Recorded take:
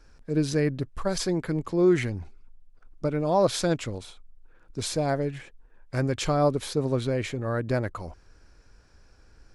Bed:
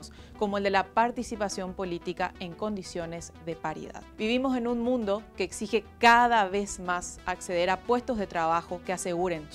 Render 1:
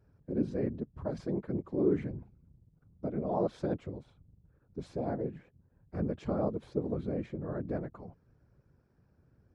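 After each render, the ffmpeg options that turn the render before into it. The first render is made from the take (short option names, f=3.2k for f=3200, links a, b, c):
-af "afftfilt=real='hypot(re,im)*cos(2*PI*random(0))':imag='hypot(re,im)*sin(2*PI*random(1))':win_size=512:overlap=0.75,bandpass=f=230:t=q:w=0.52:csg=0"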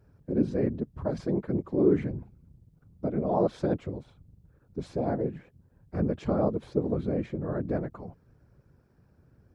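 -af "volume=5.5dB"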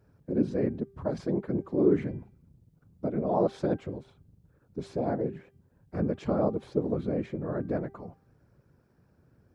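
-af "lowshelf=f=70:g=-10,bandreject=f=394.5:t=h:w=4,bandreject=f=789:t=h:w=4,bandreject=f=1.1835k:t=h:w=4,bandreject=f=1.578k:t=h:w=4,bandreject=f=1.9725k:t=h:w=4,bandreject=f=2.367k:t=h:w=4,bandreject=f=2.7615k:t=h:w=4,bandreject=f=3.156k:t=h:w=4"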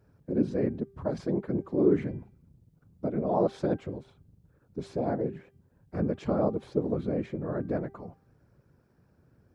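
-af anull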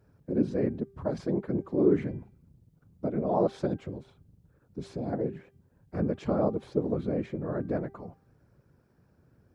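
-filter_complex "[0:a]asettb=1/sr,asplit=3[a][b][c];[a]atrim=end=3.674[d];[b]atrim=start=3.67:end=5.13,asetpts=PTS-STARTPTS,afade=t=in:d=0.004:c=qsin,afade=t=out:st=1.456:d=0.004:c=qsin,acrossover=split=310|3000[e][f][g];[f]acompressor=threshold=-42dB:ratio=2.5:attack=3.2:release=140:knee=2.83:detection=peak[h];[e][h][g]amix=inputs=3:normalize=0[i];[c]atrim=start=5.126[j];[d][i]acrossfade=d=0.004:c1=hsin:c2=qsin[k];[k][j]acrossfade=d=0.004:c1=qsin:c2=hsin"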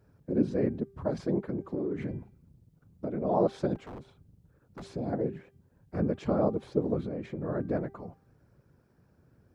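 -filter_complex "[0:a]asettb=1/sr,asplit=3[a][b][c];[a]atrim=end=1.494[d];[b]atrim=start=1.49:end=3.22,asetpts=PTS-STARTPTS,afade=t=in:d=0.004:c=qsin,afade=t=out:st=1.726:d=0.004:c=qsin,acompressor=threshold=-28dB:ratio=10:attack=3.2:release=140:knee=1:detection=peak[e];[c]atrim=start=3.216[f];[d][e]acrossfade=d=0.004:c1=hsin:c2=qsin[g];[g][f]acrossfade=d=0.004:c1=qsin:c2=hsin,asettb=1/sr,asplit=3[h][i][j];[h]atrim=end=3.754[k];[i]atrim=start=3.75:end=4.91,asetpts=PTS-STARTPTS,afade=t=in:d=0.004:c=qsin,afade=t=out:st=1.156:d=0.004:c=qsin,aeval=exprs='0.0141*(abs(mod(val(0)/0.0141+3,4)-2)-1)':c=same[l];[j]atrim=start=4.906[m];[k][l]acrossfade=d=0.004:c1=hsin:c2=qsin[n];[n][m]acrossfade=d=0.004:c1=qsin:c2=hsin,asettb=1/sr,asplit=3[o][p][q];[o]atrim=end=7.034[r];[p]atrim=start=7.03:end=7.43,asetpts=PTS-STARTPTS,afade=t=in:d=0.004:c=qsin,afade=t=out:st=0.396:d=0.004:c=qsin,acompressor=threshold=-31dB:ratio=6:attack=3.2:release=140:knee=1:detection=peak[s];[q]atrim=start=7.426[t];[r][s]acrossfade=d=0.004:c1=hsin:c2=qsin[u];[u][t]acrossfade=d=0.004:c1=qsin:c2=hsin"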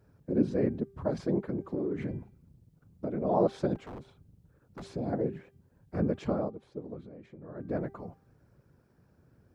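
-filter_complex "[0:a]asplit=3[a][b][c];[a]atrim=end=6.52,asetpts=PTS-STARTPTS,afade=t=out:st=6.24:d=0.28:silence=0.237137[d];[b]atrim=start=6.52:end=7.55,asetpts=PTS-STARTPTS,volume=-12.5dB[e];[c]atrim=start=7.55,asetpts=PTS-STARTPTS,afade=t=in:d=0.28:silence=0.237137[f];[d][e][f]concat=n=3:v=0:a=1"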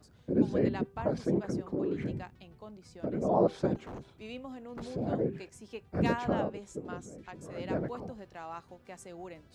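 -filter_complex "[1:a]volume=-16.5dB[a];[0:a][a]amix=inputs=2:normalize=0"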